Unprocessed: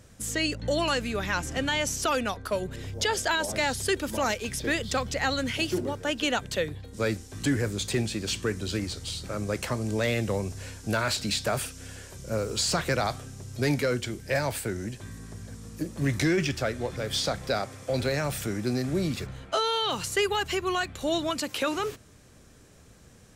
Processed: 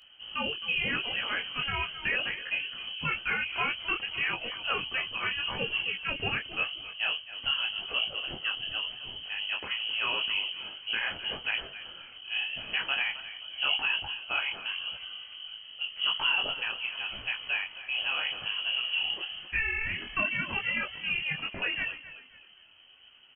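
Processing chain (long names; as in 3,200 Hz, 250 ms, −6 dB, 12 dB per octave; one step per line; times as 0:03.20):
on a send: echo with shifted repeats 264 ms, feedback 35%, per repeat +39 Hz, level −14.5 dB
on the sum: voice inversion scrambler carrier 3,100 Hz
micro pitch shift up and down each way 30 cents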